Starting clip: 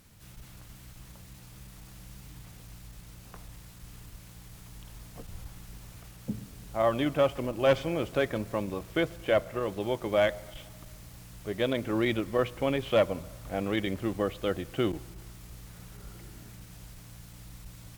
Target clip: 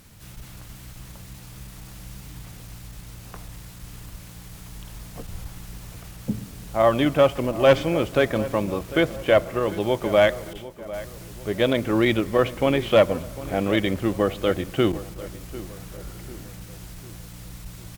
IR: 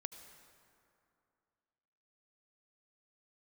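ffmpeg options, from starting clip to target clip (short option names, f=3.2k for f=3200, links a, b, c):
-filter_complex "[0:a]asettb=1/sr,asplit=3[a][b][c];[a]atrim=end=10.534[d];[b]atrim=start=10.53:end=10.94,asetpts=PTS-STARTPTS,afade=t=in:d=0.004:c=qsin,afade=t=out:st=0.406:d=0.004:c=qsin,agate=range=-33dB:threshold=-38dB:ratio=3:detection=peak[e];[c]atrim=start=10.936[f];[d][e]acrossfade=d=0.004:c1=hsin:c2=qsin[g];[g][f]acrossfade=d=0.004:c1=qsin:c2=hsin,asplit=2[h][i];[i]adelay=748,lowpass=f=2.3k:p=1,volume=-16dB,asplit=2[j][k];[k]adelay=748,lowpass=f=2.3k:p=1,volume=0.47,asplit=2[l][m];[m]adelay=748,lowpass=f=2.3k:p=1,volume=0.47,asplit=2[n][o];[o]adelay=748,lowpass=f=2.3k:p=1,volume=0.47[p];[h][j][l][n][p]amix=inputs=5:normalize=0,volume=7.5dB"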